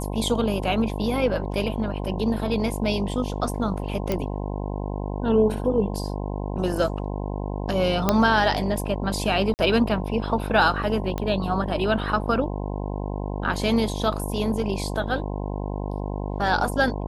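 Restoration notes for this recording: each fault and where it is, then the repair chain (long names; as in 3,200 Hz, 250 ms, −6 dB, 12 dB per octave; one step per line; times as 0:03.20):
mains buzz 50 Hz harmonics 21 −29 dBFS
0:04.12: click −11 dBFS
0:08.09: click −4 dBFS
0:09.54–0:09.59: drop-out 49 ms
0:11.18: click −14 dBFS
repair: click removal
hum removal 50 Hz, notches 21
repair the gap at 0:09.54, 49 ms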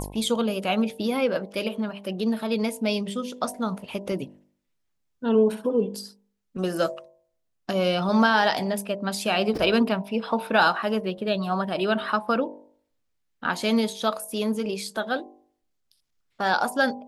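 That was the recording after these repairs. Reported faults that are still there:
0:11.18: click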